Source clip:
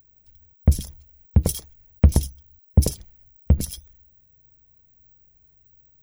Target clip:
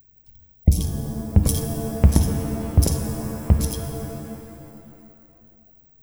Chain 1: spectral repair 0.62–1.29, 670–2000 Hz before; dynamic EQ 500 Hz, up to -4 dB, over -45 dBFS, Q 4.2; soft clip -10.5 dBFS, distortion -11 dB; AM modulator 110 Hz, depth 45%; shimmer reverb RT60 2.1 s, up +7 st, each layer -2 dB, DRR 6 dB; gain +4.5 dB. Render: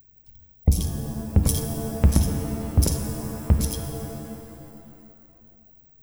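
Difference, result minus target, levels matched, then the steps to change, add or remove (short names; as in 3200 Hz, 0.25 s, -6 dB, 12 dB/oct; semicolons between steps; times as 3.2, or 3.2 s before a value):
soft clip: distortion +10 dB
change: soft clip -3 dBFS, distortion -21 dB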